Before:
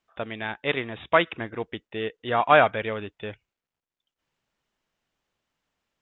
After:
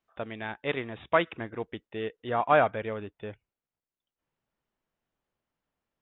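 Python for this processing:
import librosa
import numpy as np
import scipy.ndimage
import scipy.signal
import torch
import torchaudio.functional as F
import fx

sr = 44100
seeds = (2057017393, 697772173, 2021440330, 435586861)

y = fx.high_shelf(x, sr, hz=2200.0, db=fx.steps((0.0, -6.5), (2.27, -12.0)))
y = y * 10.0 ** (-3.0 / 20.0)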